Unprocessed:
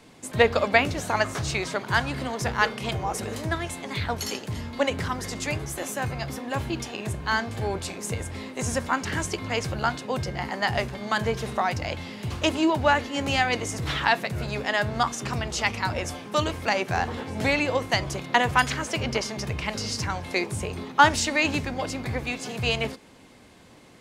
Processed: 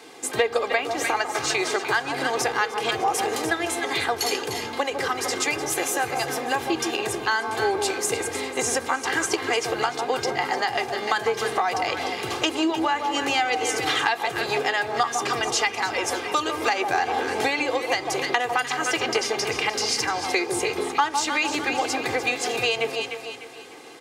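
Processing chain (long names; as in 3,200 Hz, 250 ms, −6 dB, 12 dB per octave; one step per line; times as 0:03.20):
high-pass filter 320 Hz 12 dB per octave
on a send: delay that swaps between a low-pass and a high-pass 150 ms, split 1,100 Hz, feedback 60%, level −7 dB
on the sum: downward compressor 5 to 1, threshold −29 dBFS, peak gain reduction 17 dB
comb filter 2.5 ms, depth 61%
level +7.5 dB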